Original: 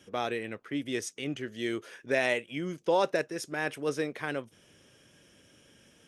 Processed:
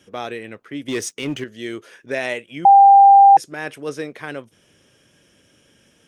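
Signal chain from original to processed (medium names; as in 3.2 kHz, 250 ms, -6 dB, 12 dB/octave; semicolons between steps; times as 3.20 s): 0.88–1.44 s: waveshaping leveller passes 2; 2.65–3.37 s: bleep 794 Hz -8 dBFS; trim +3 dB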